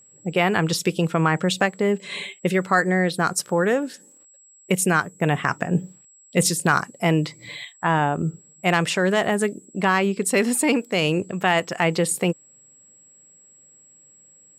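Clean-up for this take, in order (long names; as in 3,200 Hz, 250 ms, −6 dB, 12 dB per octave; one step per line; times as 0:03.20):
clipped peaks rebuilt −6 dBFS
notch filter 7,700 Hz, Q 30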